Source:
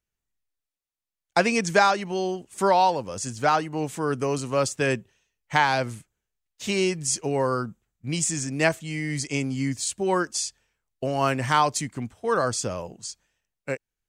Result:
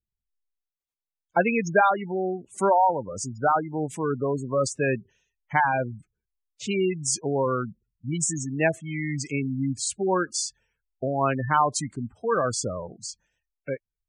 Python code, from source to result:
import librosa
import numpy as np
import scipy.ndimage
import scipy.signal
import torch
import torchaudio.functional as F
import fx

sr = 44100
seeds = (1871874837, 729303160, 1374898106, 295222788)

y = fx.spec_gate(x, sr, threshold_db=-15, keep='strong')